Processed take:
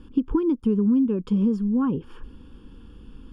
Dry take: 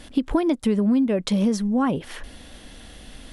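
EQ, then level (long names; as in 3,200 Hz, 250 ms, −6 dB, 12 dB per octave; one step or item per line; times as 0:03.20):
moving average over 22 samples
Butterworth band-reject 660 Hz, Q 1.4
0.0 dB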